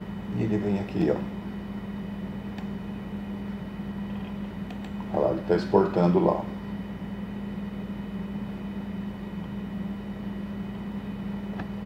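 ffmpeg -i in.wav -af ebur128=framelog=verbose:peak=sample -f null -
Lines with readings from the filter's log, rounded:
Integrated loudness:
  I:         -30.2 LUFS
  Threshold: -40.2 LUFS
Loudness range:
  LRA:         8.5 LU
  Threshold: -50.0 LUFS
  LRA low:   -35.1 LUFS
  LRA high:  -26.6 LUFS
Sample peak:
  Peak:       -6.4 dBFS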